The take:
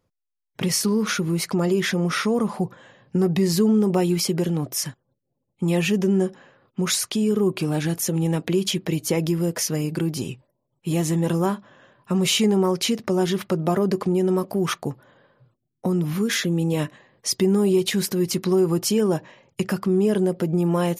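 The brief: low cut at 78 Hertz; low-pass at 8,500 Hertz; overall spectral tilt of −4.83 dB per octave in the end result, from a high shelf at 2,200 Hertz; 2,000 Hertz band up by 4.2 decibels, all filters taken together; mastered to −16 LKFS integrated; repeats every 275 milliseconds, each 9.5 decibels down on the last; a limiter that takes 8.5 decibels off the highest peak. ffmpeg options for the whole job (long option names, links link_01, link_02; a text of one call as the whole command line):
ffmpeg -i in.wav -af "highpass=78,lowpass=8500,equalizer=frequency=2000:width_type=o:gain=3,highshelf=frequency=2200:gain=4,alimiter=limit=-14.5dB:level=0:latency=1,aecho=1:1:275|550|825|1100:0.335|0.111|0.0365|0.012,volume=7.5dB" out.wav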